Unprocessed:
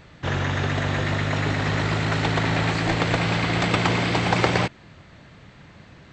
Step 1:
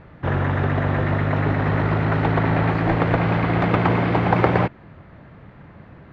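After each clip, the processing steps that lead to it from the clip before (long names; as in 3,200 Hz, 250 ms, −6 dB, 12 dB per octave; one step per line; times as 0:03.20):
low-pass filter 1,500 Hz 12 dB per octave
level +4 dB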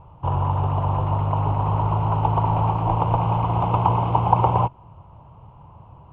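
drawn EQ curve 120 Hz 0 dB, 230 Hz −14 dB, 660 Hz −5 dB, 960 Hz +8 dB, 1,800 Hz −30 dB, 2,900 Hz −4 dB, 4,200 Hz −23 dB, 6,500 Hz −11 dB
level +1 dB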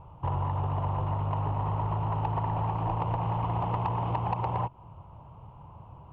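downward compressor 4 to 1, threshold −23 dBFS, peak gain reduction 11.5 dB
soft clipping −16.5 dBFS, distortion −22 dB
level −2.5 dB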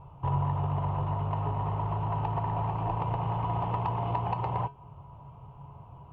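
tuned comb filter 140 Hz, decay 0.26 s, harmonics odd, mix 70%
level +7.5 dB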